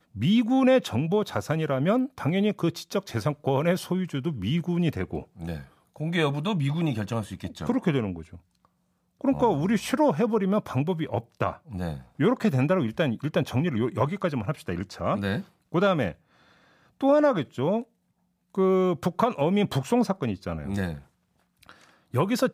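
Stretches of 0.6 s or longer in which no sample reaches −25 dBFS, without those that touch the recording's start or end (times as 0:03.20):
0:08.12–0:09.24
0:16.10–0:17.03
0:17.80–0:18.58
0:20.91–0:22.14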